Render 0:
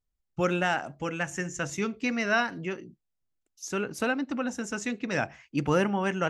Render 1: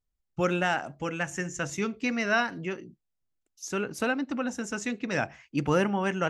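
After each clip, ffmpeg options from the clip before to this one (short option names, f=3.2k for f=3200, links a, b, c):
-af anull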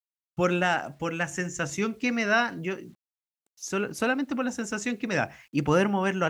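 -af "acrusher=bits=10:mix=0:aa=0.000001,volume=2dB"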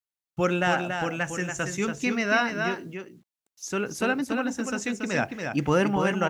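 -af "aecho=1:1:282:0.501"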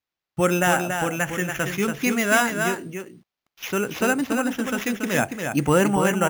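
-af "acrusher=samples=5:mix=1:aa=0.000001,volume=4dB"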